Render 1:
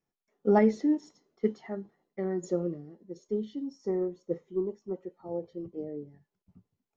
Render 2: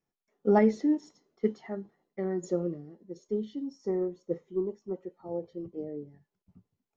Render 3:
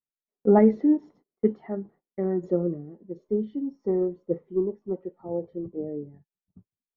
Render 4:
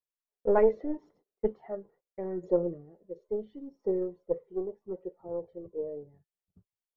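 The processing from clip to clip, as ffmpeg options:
-af anull
-af "agate=range=-24dB:threshold=-57dB:ratio=16:detection=peak,lowpass=2.6k,tiltshelf=f=1.4k:g=6"
-af "aeval=exprs='0.398*(cos(1*acos(clip(val(0)/0.398,-1,1)))-cos(1*PI/2))+0.0891*(cos(2*acos(clip(val(0)/0.398,-1,1)))-cos(2*PI/2))':c=same,aphaser=in_gain=1:out_gain=1:delay=2.2:decay=0.39:speed=0.78:type=triangular,equalizer=f=125:t=o:w=1:g=-4,equalizer=f=250:t=o:w=1:g=-9,equalizer=f=500:t=o:w=1:g=7,volume=-6.5dB"

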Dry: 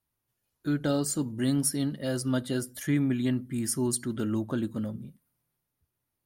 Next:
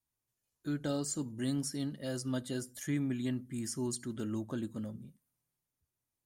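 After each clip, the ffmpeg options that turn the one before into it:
-filter_complex "[0:a]bandreject=f=1.4k:w=23,acrossover=split=6400[a][b];[b]acompressor=threshold=-39dB:ratio=4:attack=1:release=60[c];[a][c]amix=inputs=2:normalize=0,equalizer=f=7.1k:t=o:w=0.72:g=8.5,volume=-7.5dB"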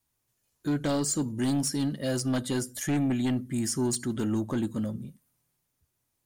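-af "aeval=exprs='0.0794*sin(PI/2*2*val(0)/0.0794)':c=same"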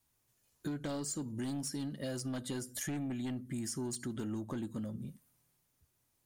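-af "acompressor=threshold=-38dB:ratio=6,volume=1dB"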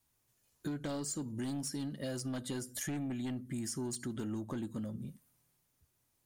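-af anull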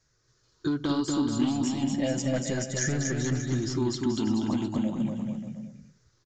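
-af "afftfilt=real='re*pow(10,12/40*sin(2*PI*(0.56*log(max(b,1)*sr/1024/100)/log(2)-(-0.35)*(pts-256)/sr)))':imag='im*pow(10,12/40*sin(2*PI*(0.56*log(max(b,1)*sr/1024/100)/log(2)-(-0.35)*(pts-256)/sr)))':win_size=1024:overlap=0.75,aecho=1:1:240|432|585.6|708.5|806.8:0.631|0.398|0.251|0.158|0.1,aresample=16000,aresample=44100,volume=7.5dB"

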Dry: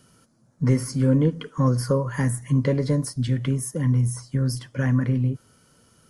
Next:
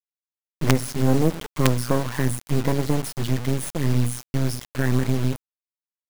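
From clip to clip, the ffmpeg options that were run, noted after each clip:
-af "acrusher=bits=3:dc=4:mix=0:aa=0.000001,volume=3.5dB"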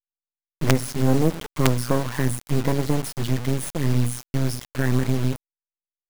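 -af "aeval=exprs='abs(val(0))':c=same"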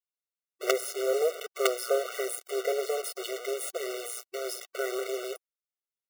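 -af "afftfilt=real='re*eq(mod(floor(b*sr/1024/380),2),1)':imag='im*eq(mod(floor(b*sr/1024/380),2),1)':win_size=1024:overlap=0.75"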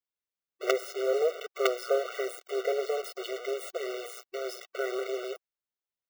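-af "equalizer=f=11k:w=0.72:g=-14"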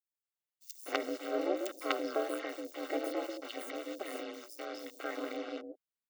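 -filter_complex "[0:a]acrossover=split=420|5900[a][b][c];[b]adelay=250[d];[a]adelay=390[e];[e][d][c]amix=inputs=3:normalize=0,aeval=exprs='val(0)*sin(2*PI*110*n/s)':c=same,volume=-1dB"

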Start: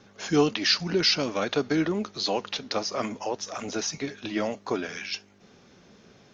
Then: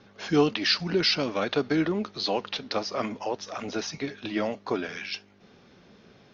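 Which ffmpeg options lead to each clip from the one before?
-af "lowpass=f=5.1k:w=0.5412,lowpass=f=5.1k:w=1.3066"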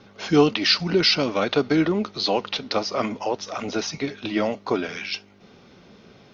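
-af "bandreject=f=1.7k:w=11,volume=5dB"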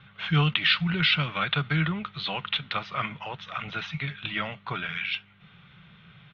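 -af "firequalizer=gain_entry='entry(100,0);entry(150,9);entry(240,-17);entry(410,-17);entry(1300,3);entry(3500,4);entry(4900,-23)':delay=0.05:min_phase=1,volume=-1.5dB"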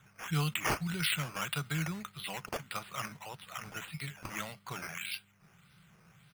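-af "acrusher=samples=9:mix=1:aa=0.000001:lfo=1:lforange=5.4:lforate=1.7,volume=-9dB"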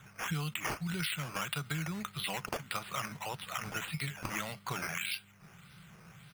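-af "acompressor=threshold=-39dB:ratio=10,volume=6.5dB"

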